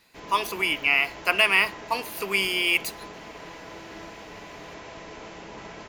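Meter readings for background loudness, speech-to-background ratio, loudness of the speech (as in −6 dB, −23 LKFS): −41.0 LKFS, 18.0 dB, −23.0 LKFS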